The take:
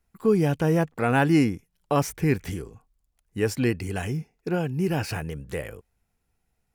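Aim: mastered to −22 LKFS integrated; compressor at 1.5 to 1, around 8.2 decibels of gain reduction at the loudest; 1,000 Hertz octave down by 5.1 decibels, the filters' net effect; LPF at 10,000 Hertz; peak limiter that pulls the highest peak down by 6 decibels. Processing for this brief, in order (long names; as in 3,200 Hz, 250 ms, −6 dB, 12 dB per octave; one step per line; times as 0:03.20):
low-pass filter 10,000 Hz
parametric band 1,000 Hz −7.5 dB
downward compressor 1.5 to 1, threshold −39 dBFS
level +14 dB
brickwall limiter −11 dBFS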